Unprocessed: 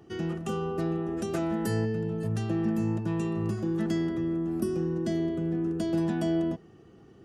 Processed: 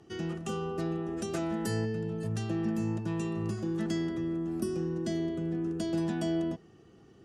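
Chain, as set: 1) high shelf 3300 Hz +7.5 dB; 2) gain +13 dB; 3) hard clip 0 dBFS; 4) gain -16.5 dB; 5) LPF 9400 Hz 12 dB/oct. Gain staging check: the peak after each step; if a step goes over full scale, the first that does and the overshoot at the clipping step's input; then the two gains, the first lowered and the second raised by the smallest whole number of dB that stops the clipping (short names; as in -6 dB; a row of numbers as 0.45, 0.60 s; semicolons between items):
-15.0, -2.0, -2.0, -18.5, -19.0 dBFS; no overload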